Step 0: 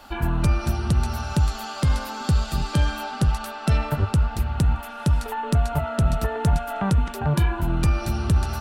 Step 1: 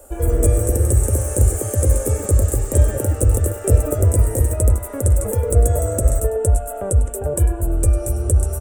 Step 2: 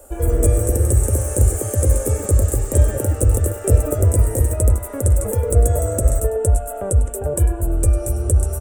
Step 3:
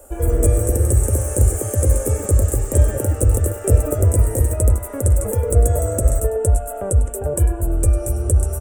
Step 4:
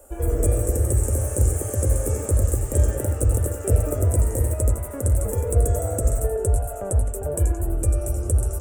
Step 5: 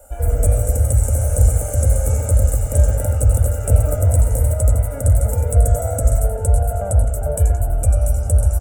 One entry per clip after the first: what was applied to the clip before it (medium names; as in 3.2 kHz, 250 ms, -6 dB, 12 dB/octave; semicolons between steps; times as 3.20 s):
ever faster or slower copies 118 ms, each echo +6 st, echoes 2; FFT filter 100 Hz 0 dB, 160 Hz -21 dB, 530 Hz +9 dB, 860 Hz -16 dB, 1.6 kHz -15 dB, 2.9 kHz -20 dB, 4.5 kHz -25 dB, 8.2 kHz +13 dB, 13 kHz +4 dB; delay 100 ms -15.5 dB; trim +5 dB
no audible change
peaking EQ 4.1 kHz -4.5 dB 0.49 oct
modulated delay 86 ms, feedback 34%, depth 199 cents, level -8.5 dB; trim -5 dB
comb 1.4 ms, depth 99%; echo from a far wall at 180 m, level -7 dB